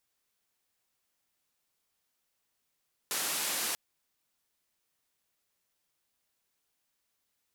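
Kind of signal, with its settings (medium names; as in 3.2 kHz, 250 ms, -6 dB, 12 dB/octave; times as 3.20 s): noise band 230–13000 Hz, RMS -33 dBFS 0.64 s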